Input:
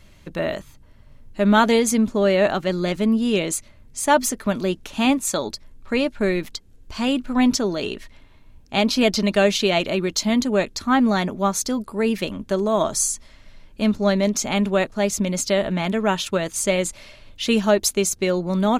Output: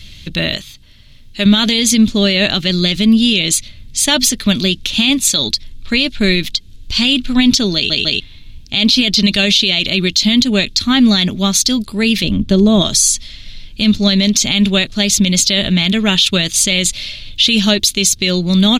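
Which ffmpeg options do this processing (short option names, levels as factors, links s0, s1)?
-filter_complex "[0:a]asettb=1/sr,asplit=3[s0][s1][s2];[s0]atrim=end=0.574[s3];[s1]atrim=start=0.57:end=1.46,asetpts=PTS-STARTPTS,afade=t=in:d=0.004:c=qsin,afade=t=out:st=0.886:d=0.004:c=qsin,lowshelf=f=250:g=-10[s4];[s2]atrim=start=1.456[s5];[s3][s4]acrossfade=d=0.004:c1=hsin:c2=qsin[s6];[s6][s5]acrossfade=d=0.004:c1=qsin:c2=hsin,asettb=1/sr,asplit=3[s7][s8][s9];[s7]atrim=end=12.234[s10];[s8]atrim=start=12.23:end=12.82,asetpts=PTS-STARTPTS,afade=t=in:d=0.004:c=qsin,afade=t=out:st=0.586:d=0.004:c=qsin,tiltshelf=f=970:g=7[s11];[s9]atrim=start=12.816[s12];[s10][s11]acrossfade=d=0.004:c1=hsin:c2=qsin[s13];[s13][s12]acrossfade=d=0.004:c1=qsin:c2=hsin,asplit=4[s14][s15][s16][s17];[s14]atrim=end=7.902[s18];[s15]atrim=start=7.748:end=7.902[s19];[s16]atrim=start=7.748:end=7.902[s20];[s17]atrim=start=8.198[s21];[s18][s19]acrossfade=d=0.004:c1=hsin:c2=hsin[s22];[s22][s20]acrossfade=d=0.004:c1=hsin:c2=hsin[s23];[s23][s21]acrossfade=d=0.004:c1=hsin:c2=hsin,firequalizer=gain_entry='entry(110,0);entry(460,-13);entry(950,-16);entry(2100,-1);entry(3600,12);entry(5300,4);entry(7900,-2)':delay=0.05:min_phase=1,alimiter=level_in=5.31:limit=0.891:release=50:level=0:latency=1,volume=0.891"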